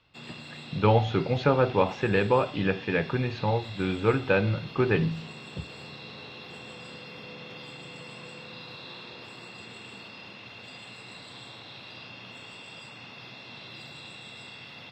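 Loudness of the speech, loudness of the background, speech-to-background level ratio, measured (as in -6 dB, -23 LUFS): -26.0 LUFS, -42.5 LUFS, 16.5 dB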